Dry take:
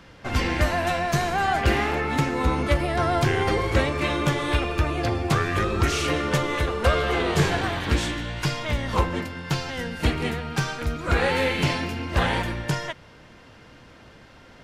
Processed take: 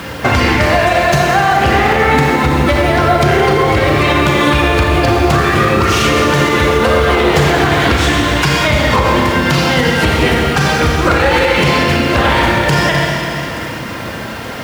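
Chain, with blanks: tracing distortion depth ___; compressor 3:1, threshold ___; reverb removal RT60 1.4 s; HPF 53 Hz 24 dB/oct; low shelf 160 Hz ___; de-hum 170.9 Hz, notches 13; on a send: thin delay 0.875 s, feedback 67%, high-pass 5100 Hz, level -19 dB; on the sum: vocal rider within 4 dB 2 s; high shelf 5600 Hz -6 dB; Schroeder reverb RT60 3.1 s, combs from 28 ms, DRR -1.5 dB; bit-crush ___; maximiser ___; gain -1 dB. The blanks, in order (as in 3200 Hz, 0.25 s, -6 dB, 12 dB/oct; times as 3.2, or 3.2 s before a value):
0.035 ms, -33 dBFS, -4 dB, 10-bit, +24.5 dB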